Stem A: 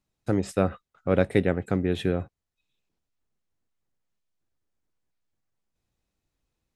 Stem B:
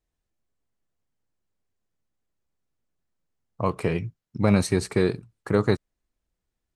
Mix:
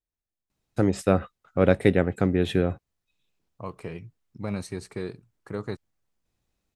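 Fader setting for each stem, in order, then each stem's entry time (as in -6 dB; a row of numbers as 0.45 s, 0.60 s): +2.5 dB, -11.5 dB; 0.50 s, 0.00 s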